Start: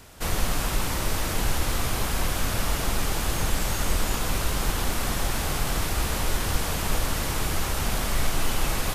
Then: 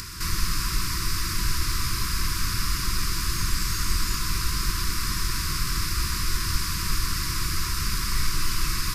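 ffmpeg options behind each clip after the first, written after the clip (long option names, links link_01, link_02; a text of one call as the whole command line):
ffmpeg -i in.wav -af "afftfilt=real='re*(1-between(b*sr/4096,410,960))':imag='im*(1-between(b*sr/4096,410,960))':win_size=4096:overlap=0.75,equalizer=frequency=250:width_type=o:width=0.33:gain=-11,equalizer=frequency=400:width_type=o:width=0.33:gain=-8,equalizer=frequency=3150:width_type=o:width=0.33:gain=-7,equalizer=frequency=5000:width_type=o:width=0.33:gain=10,acompressor=mode=upward:threshold=-26dB:ratio=2.5" out.wav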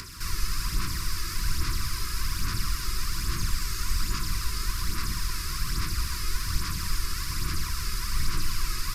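ffmpeg -i in.wav -filter_complex "[0:a]aphaser=in_gain=1:out_gain=1:delay=2.4:decay=0.46:speed=1.2:type=sinusoidal,acrossover=split=220|1400[link_01][link_02][link_03];[link_01]aeval=exprs='sgn(val(0))*max(abs(val(0))-0.00668,0)':channel_layout=same[link_04];[link_04][link_02][link_03]amix=inputs=3:normalize=0,volume=-6dB" out.wav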